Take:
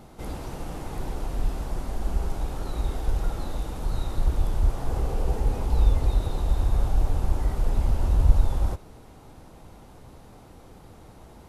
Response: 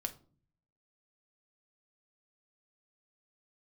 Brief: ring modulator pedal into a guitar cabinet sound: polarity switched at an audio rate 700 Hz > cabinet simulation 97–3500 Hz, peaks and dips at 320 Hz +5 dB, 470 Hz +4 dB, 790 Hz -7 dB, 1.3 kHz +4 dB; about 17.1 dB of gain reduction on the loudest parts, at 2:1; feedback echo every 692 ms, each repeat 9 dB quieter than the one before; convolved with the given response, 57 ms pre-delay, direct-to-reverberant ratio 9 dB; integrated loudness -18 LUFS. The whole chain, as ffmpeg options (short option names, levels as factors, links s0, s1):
-filter_complex "[0:a]acompressor=threshold=0.00794:ratio=2,aecho=1:1:692|1384|2076|2768:0.355|0.124|0.0435|0.0152,asplit=2[s0][s1];[1:a]atrim=start_sample=2205,adelay=57[s2];[s1][s2]afir=irnorm=-1:irlink=0,volume=0.376[s3];[s0][s3]amix=inputs=2:normalize=0,aeval=exprs='val(0)*sgn(sin(2*PI*700*n/s))':c=same,highpass=97,equalizer=f=320:t=q:w=4:g=5,equalizer=f=470:t=q:w=4:g=4,equalizer=f=790:t=q:w=4:g=-7,equalizer=f=1300:t=q:w=4:g=4,lowpass=f=3500:w=0.5412,lowpass=f=3500:w=1.3066,volume=8.41"